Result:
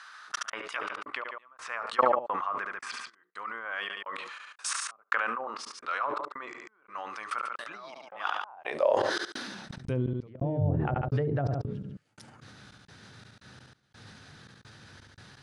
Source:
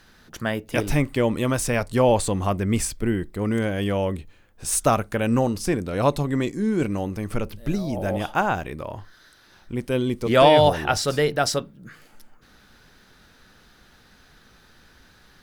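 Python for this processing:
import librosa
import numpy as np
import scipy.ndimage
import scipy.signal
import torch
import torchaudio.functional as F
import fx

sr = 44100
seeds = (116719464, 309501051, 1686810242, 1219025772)

y = scipy.signal.sosfilt(scipy.signal.ellip(4, 1.0, 40, 10000.0, 'lowpass', fs=sr, output='sos'), x)
y = fx.hum_notches(y, sr, base_hz=60, count=8)
y = fx.env_lowpass_down(y, sr, base_hz=320.0, full_db=-16.0)
y = fx.low_shelf(y, sr, hz=170.0, db=-11.5, at=(3.65, 6.33))
y = fx.level_steps(y, sr, step_db=20)
y = fx.filter_sweep_highpass(y, sr, from_hz=1200.0, to_hz=110.0, start_s=8.36, end_s=9.95, q=4.5)
y = fx.step_gate(y, sr, bpm=85, pattern='xx.xx.x..x', floor_db=-60.0, edge_ms=4.5)
y = fx.echo_feedback(y, sr, ms=71, feedback_pct=32, wet_db=-21.5)
y = fx.sustainer(y, sr, db_per_s=30.0)
y = F.gain(torch.from_numpy(y), 7.5).numpy()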